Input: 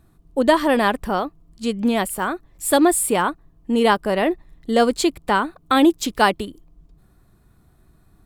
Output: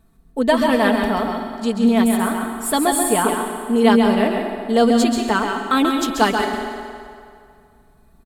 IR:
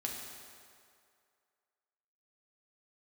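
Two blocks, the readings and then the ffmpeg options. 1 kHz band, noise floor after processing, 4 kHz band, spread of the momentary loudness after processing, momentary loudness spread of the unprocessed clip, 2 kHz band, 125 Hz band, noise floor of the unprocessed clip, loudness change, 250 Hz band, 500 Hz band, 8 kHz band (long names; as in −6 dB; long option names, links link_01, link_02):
+1.0 dB, −53 dBFS, +1.0 dB, 10 LU, 12 LU, +0.5 dB, +3.5 dB, −57 dBFS, +1.5 dB, +3.5 dB, +1.0 dB, +1.0 dB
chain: -filter_complex "[0:a]aecho=1:1:4.5:0.65,asplit=2[link_01][link_02];[1:a]atrim=start_sample=2205,adelay=134[link_03];[link_02][link_03]afir=irnorm=-1:irlink=0,volume=-3.5dB[link_04];[link_01][link_04]amix=inputs=2:normalize=0,volume=-2.5dB"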